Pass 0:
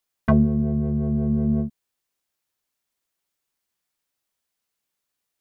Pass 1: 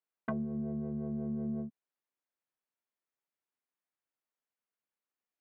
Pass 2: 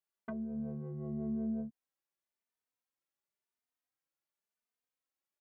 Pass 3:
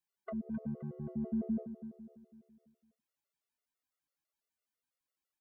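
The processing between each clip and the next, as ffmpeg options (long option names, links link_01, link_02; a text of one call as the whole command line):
ffmpeg -i in.wav -filter_complex "[0:a]acrossover=split=160 2500:gain=0.141 1 0.158[link_01][link_02][link_03];[link_01][link_02][link_03]amix=inputs=3:normalize=0,acompressor=threshold=-23dB:ratio=6,volume=-9dB" out.wav
ffmpeg -i in.wav -filter_complex "[0:a]alimiter=level_in=2dB:limit=-24dB:level=0:latency=1:release=362,volume=-2dB,asplit=2[link_01][link_02];[link_02]adelay=3.1,afreqshift=0.94[link_03];[link_01][link_03]amix=inputs=2:normalize=1,volume=1dB" out.wav
ffmpeg -i in.wav -af "aecho=1:1:261|522|783|1044|1305:0.266|0.125|0.0588|0.0276|0.013,afftfilt=real='re*gt(sin(2*PI*6*pts/sr)*(1-2*mod(floor(b*sr/1024/370),2)),0)':imag='im*gt(sin(2*PI*6*pts/sr)*(1-2*mod(floor(b*sr/1024/370),2)),0)':win_size=1024:overlap=0.75,volume=3dB" out.wav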